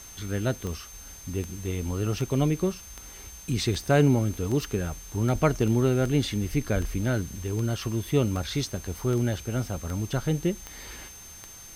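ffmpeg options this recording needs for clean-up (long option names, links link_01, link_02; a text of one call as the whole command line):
ffmpeg -i in.wav -af "adeclick=threshold=4,bandreject=frequency=6300:width=30,afwtdn=0.0035" out.wav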